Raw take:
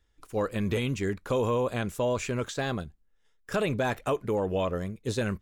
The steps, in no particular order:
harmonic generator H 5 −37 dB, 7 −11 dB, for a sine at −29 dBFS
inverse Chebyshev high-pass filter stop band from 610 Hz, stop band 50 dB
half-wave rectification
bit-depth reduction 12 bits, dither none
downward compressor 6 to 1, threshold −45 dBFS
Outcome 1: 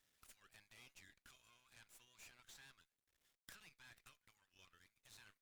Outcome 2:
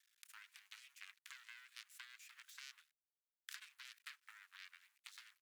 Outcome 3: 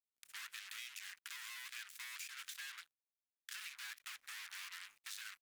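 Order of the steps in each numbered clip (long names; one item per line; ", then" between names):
bit-depth reduction, then downward compressor, then inverse Chebyshev high-pass filter, then half-wave rectification, then harmonic generator
half-wave rectification, then downward compressor, then bit-depth reduction, then harmonic generator, then inverse Chebyshev high-pass filter
half-wave rectification, then harmonic generator, then inverse Chebyshev high-pass filter, then bit-depth reduction, then downward compressor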